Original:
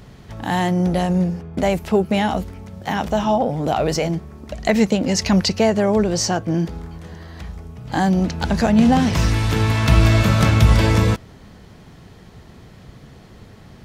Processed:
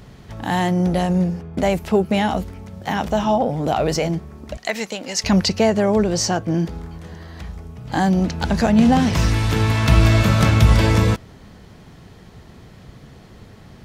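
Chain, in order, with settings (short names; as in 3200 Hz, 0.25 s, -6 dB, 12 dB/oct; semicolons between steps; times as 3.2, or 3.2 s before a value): 4.57–5.24 HPF 1200 Hz 6 dB/oct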